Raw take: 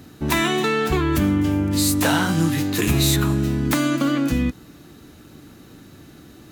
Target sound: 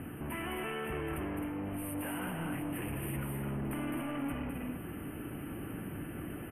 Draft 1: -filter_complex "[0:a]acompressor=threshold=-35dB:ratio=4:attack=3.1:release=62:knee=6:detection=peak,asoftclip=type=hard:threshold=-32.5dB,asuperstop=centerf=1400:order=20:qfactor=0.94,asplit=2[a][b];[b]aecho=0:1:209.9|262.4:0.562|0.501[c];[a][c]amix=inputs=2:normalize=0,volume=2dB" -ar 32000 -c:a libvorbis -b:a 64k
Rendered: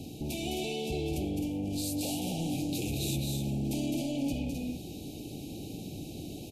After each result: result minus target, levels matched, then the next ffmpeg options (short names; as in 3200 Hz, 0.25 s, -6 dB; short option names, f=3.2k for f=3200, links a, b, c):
4000 Hz band +7.0 dB; hard clip: distortion -7 dB
-filter_complex "[0:a]acompressor=threshold=-35dB:ratio=4:attack=3.1:release=62:knee=6:detection=peak,asoftclip=type=hard:threshold=-32.5dB,asuperstop=centerf=5300:order=20:qfactor=0.94,asplit=2[a][b];[b]aecho=0:1:209.9|262.4:0.562|0.501[c];[a][c]amix=inputs=2:normalize=0,volume=2dB" -ar 32000 -c:a libvorbis -b:a 64k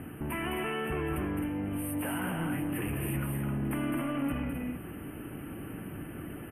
hard clip: distortion -7 dB
-filter_complex "[0:a]acompressor=threshold=-35dB:ratio=4:attack=3.1:release=62:knee=6:detection=peak,asoftclip=type=hard:threshold=-39dB,asuperstop=centerf=5300:order=20:qfactor=0.94,asplit=2[a][b];[b]aecho=0:1:209.9|262.4:0.562|0.501[c];[a][c]amix=inputs=2:normalize=0,volume=2dB" -ar 32000 -c:a libvorbis -b:a 64k